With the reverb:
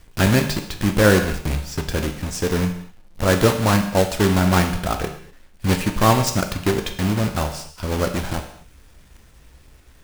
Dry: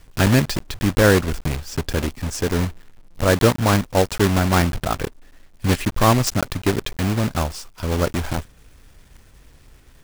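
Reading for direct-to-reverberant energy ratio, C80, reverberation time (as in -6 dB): 5.0 dB, 11.5 dB, not exponential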